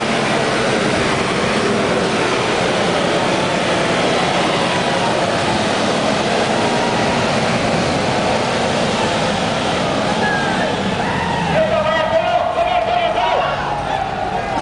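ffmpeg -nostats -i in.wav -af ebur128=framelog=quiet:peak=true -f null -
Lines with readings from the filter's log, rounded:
Integrated loudness:
  I:         -16.4 LUFS
  Threshold: -26.4 LUFS
Loudness range:
  LRA:         1.0 LU
  Threshold: -36.3 LUFS
  LRA low:   -16.8 LUFS
  LRA high:  -15.9 LUFS
True peak:
  Peak:       -3.3 dBFS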